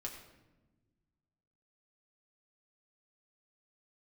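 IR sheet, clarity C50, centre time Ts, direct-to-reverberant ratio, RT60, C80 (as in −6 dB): 6.5 dB, 30 ms, −1.0 dB, 1.1 s, 8.0 dB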